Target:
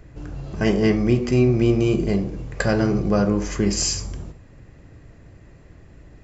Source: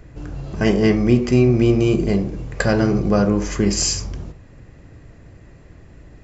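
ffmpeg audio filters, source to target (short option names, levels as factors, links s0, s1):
-af "bandreject=f=242.8:t=h:w=4,bandreject=f=485.6:t=h:w=4,bandreject=f=728.4:t=h:w=4,bandreject=f=971.2:t=h:w=4,bandreject=f=1214:t=h:w=4,bandreject=f=1456.8:t=h:w=4,bandreject=f=1699.6:t=h:w=4,bandreject=f=1942.4:t=h:w=4,bandreject=f=2185.2:t=h:w=4,bandreject=f=2428:t=h:w=4,bandreject=f=2670.8:t=h:w=4,bandreject=f=2913.6:t=h:w=4,bandreject=f=3156.4:t=h:w=4,bandreject=f=3399.2:t=h:w=4,bandreject=f=3642:t=h:w=4,bandreject=f=3884.8:t=h:w=4,bandreject=f=4127.6:t=h:w=4,bandreject=f=4370.4:t=h:w=4,bandreject=f=4613.2:t=h:w=4,bandreject=f=4856:t=h:w=4,bandreject=f=5098.8:t=h:w=4,bandreject=f=5341.6:t=h:w=4,bandreject=f=5584.4:t=h:w=4,bandreject=f=5827.2:t=h:w=4,bandreject=f=6070:t=h:w=4,bandreject=f=6312.8:t=h:w=4,bandreject=f=6555.6:t=h:w=4,bandreject=f=6798.4:t=h:w=4,bandreject=f=7041.2:t=h:w=4,bandreject=f=7284:t=h:w=4,bandreject=f=7526.8:t=h:w=4,volume=0.75"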